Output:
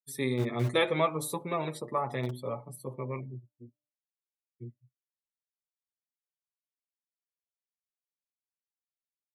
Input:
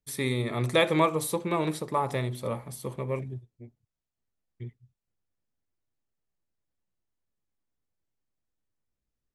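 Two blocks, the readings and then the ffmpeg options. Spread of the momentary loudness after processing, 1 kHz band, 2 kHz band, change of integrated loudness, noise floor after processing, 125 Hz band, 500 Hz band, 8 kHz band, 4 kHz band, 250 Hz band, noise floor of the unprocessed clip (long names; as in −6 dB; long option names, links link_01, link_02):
20 LU, −3.5 dB, −3.5 dB, −3.5 dB, below −85 dBFS, −3.0 dB, −3.0 dB, −4.5 dB, −4.0 dB, −4.0 dB, below −85 dBFS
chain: -filter_complex "[0:a]afftdn=noise_reduction=26:noise_floor=-45,acrossover=split=110|5900[link_01][link_02][link_03];[link_01]acrusher=bits=5:mix=0:aa=0.000001[link_04];[link_04][link_02][link_03]amix=inputs=3:normalize=0,bandreject=frequency=297.5:width_type=h:width=4,bandreject=frequency=595:width_type=h:width=4,bandreject=frequency=892.5:width_type=h:width=4,flanger=delay=7:depth=1.6:regen=12:speed=0.75:shape=sinusoidal"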